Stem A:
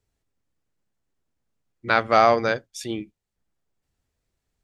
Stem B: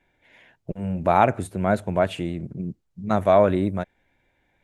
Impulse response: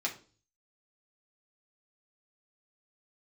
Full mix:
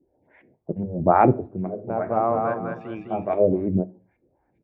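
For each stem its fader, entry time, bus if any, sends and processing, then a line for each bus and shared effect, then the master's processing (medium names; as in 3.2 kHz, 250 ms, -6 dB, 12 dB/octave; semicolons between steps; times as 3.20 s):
-12.0 dB, 0.00 s, no send, echo send -3 dB, peaking EQ 2.6 kHz +12 dB 0.34 oct; LFO low-pass saw up 0.57 Hz 580–4400 Hz
-3.0 dB, 0.00 s, send -13 dB, no echo send, LFO low-pass saw up 2.4 Hz 300–2500 Hz; lamp-driven phase shifter 3.7 Hz; auto duck -19 dB, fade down 0.50 s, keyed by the first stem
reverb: on, RT60 0.40 s, pre-delay 3 ms
echo: feedback delay 204 ms, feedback 31%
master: high-pass 59 Hz; tilt shelf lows +9.5 dB, about 900 Hz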